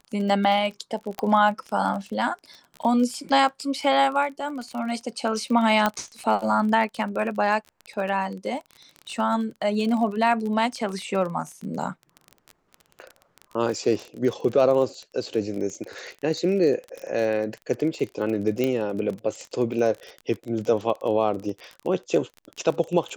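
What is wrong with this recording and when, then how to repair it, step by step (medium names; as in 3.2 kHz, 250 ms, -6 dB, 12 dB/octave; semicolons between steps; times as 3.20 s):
crackle 29 per s -30 dBFS
1.19 s: pop -13 dBFS
5.86 s: pop -8 dBFS
18.64 s: pop -12 dBFS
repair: de-click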